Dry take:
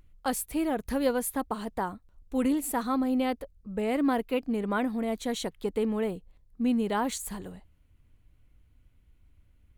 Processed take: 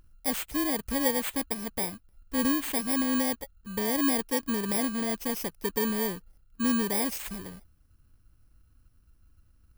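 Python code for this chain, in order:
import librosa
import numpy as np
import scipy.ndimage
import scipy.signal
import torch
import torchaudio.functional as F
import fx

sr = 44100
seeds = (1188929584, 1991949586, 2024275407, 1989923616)

y = fx.bit_reversed(x, sr, seeds[0], block=32)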